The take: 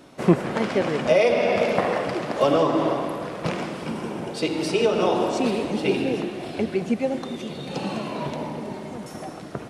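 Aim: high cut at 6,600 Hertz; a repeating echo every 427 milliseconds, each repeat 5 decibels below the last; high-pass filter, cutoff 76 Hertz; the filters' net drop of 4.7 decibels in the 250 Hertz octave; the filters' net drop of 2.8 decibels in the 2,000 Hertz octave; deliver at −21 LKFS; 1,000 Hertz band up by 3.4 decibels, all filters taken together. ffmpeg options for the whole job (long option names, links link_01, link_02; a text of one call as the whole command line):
ffmpeg -i in.wav -af "highpass=76,lowpass=6600,equalizer=frequency=250:width_type=o:gain=-7,equalizer=frequency=1000:width_type=o:gain=6,equalizer=frequency=2000:width_type=o:gain=-5,aecho=1:1:427|854|1281|1708|2135|2562|2989:0.562|0.315|0.176|0.0988|0.0553|0.031|0.0173,volume=2.5dB" out.wav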